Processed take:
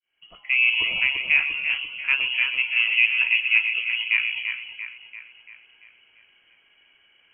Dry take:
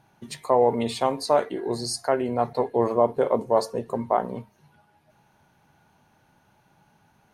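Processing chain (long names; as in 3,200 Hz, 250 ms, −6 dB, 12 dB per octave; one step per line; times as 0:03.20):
fade in at the beginning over 0.70 s
voice inversion scrambler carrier 3,100 Hz
echo with a time of its own for lows and highs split 2,400 Hz, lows 341 ms, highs 127 ms, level −5 dB
0:01.43–0:02.56: multiband upward and downward expander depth 40%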